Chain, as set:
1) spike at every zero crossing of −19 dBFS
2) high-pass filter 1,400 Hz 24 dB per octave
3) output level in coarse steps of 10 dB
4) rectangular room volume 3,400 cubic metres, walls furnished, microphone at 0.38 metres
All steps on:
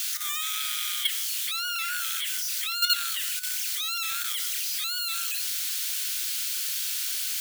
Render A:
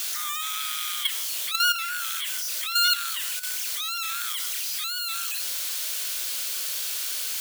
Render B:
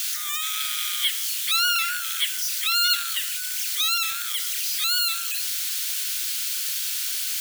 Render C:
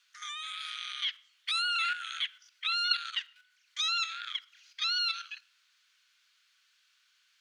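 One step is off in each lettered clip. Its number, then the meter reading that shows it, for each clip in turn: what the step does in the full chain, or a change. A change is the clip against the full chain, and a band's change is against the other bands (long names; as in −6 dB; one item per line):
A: 2, 1 kHz band +4.5 dB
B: 3, change in crest factor −3.0 dB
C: 1, change in crest factor +3.0 dB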